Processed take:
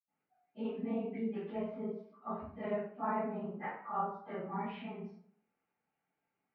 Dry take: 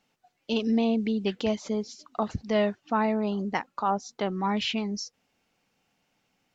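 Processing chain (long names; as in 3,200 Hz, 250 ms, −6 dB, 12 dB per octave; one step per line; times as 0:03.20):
random phases in long frames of 50 ms
low-pass filter 2,200 Hz 24 dB per octave
low-shelf EQ 120 Hz −12 dB
hum removal 157.3 Hz, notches 27
convolution reverb RT60 0.60 s, pre-delay 76 ms, DRR −60 dB
level −1 dB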